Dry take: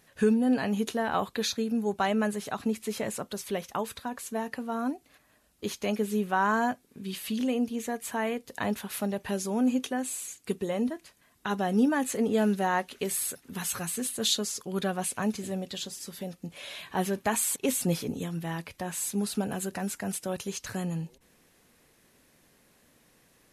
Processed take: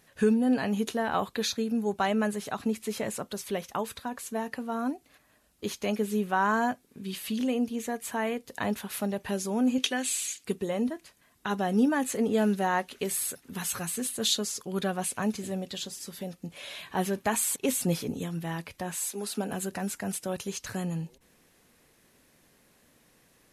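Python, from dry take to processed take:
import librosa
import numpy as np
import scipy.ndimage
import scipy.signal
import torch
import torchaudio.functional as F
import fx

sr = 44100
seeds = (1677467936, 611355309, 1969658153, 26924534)

y = fx.weighting(x, sr, curve='D', at=(9.78, 10.44))
y = fx.highpass(y, sr, hz=fx.line((18.96, 390.0), (19.5, 180.0)), slope=24, at=(18.96, 19.5), fade=0.02)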